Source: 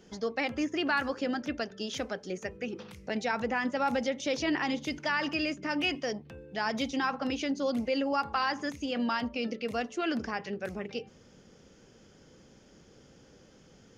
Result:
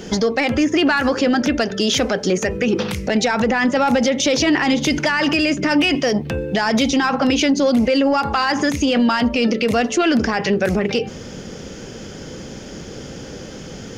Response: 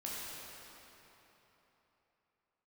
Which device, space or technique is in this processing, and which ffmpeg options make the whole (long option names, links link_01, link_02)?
mastering chain: -af "equalizer=frequency=1100:width_type=o:width=0.77:gain=-2.5,acompressor=threshold=-34dB:ratio=2.5,asoftclip=type=tanh:threshold=-26dB,alimiter=level_in=32.5dB:limit=-1dB:release=50:level=0:latency=1,volume=-8.5dB"